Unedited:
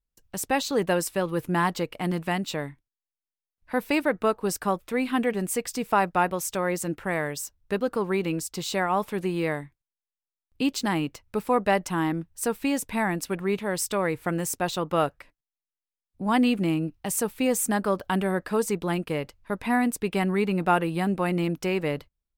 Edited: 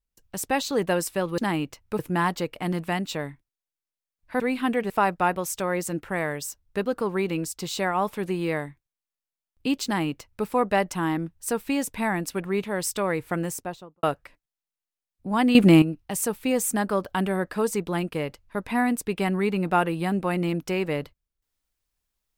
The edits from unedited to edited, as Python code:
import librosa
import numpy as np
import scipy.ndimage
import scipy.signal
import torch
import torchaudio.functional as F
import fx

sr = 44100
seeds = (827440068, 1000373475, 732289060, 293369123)

y = fx.studio_fade_out(x, sr, start_s=14.32, length_s=0.66)
y = fx.edit(y, sr, fx.cut(start_s=3.79, length_s=1.11),
    fx.cut(start_s=5.4, length_s=0.45),
    fx.duplicate(start_s=10.8, length_s=0.61, to_s=1.38),
    fx.clip_gain(start_s=16.5, length_s=0.27, db=10.5), tone=tone)